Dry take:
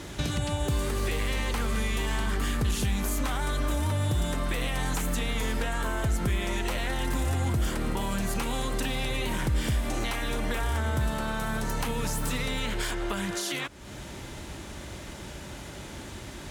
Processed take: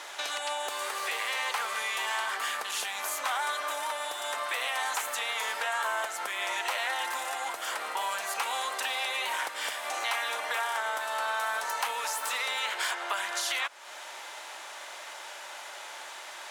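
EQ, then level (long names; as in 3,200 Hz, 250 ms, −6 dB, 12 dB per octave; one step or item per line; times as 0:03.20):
high-pass filter 730 Hz 24 dB per octave
spectral tilt −1.5 dB per octave
+5.0 dB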